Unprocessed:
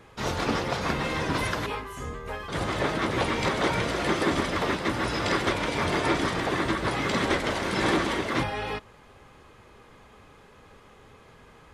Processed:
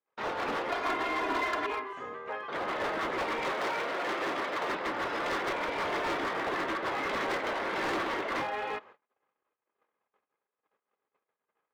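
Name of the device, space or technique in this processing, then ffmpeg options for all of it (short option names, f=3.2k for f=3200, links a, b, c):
walkie-talkie: -filter_complex "[0:a]highpass=430,lowpass=2.2k,asoftclip=type=hard:threshold=-28.5dB,agate=range=-39dB:threshold=-51dB:ratio=16:detection=peak,asettb=1/sr,asplit=3[a][b][c];[a]atrim=end=0.694[d];[b]atrim=start=0.69:end=1.93,asetpts=PTS-STARTPTS,afade=t=in:d=0.004:c=qsin,afade=t=out:st=1.236:d=0.004:c=qsin,aecho=1:1:2.9:0.74,atrim=end_sample=54684[e];[c]atrim=start=1.926[f];[d][e]acrossfade=d=0.004:c1=hsin:c2=qsin[g];[g][f]acrossfade=d=0.004:c1=qsin:c2=hsin,asettb=1/sr,asplit=3[h][i][j];[h]atrim=end=3.524[k];[i]atrim=start=3.52:end=4.7,asetpts=PTS-STARTPTS,afade=t=in:d=0.004:c=qsin,afade=t=out:st=1.176:d=0.004:c=qsin,highpass=f=230:p=1[l];[j]atrim=start=4.696[m];[k][l]acrossfade=d=0.004:c1=hsin:c2=qsin[n];[n][m]acrossfade=d=0.004:c1=qsin:c2=hsin"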